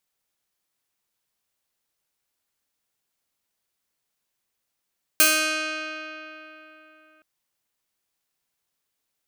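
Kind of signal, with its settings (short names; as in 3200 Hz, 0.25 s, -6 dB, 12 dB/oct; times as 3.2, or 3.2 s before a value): plucked string D#4, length 2.02 s, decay 3.63 s, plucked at 0.32, bright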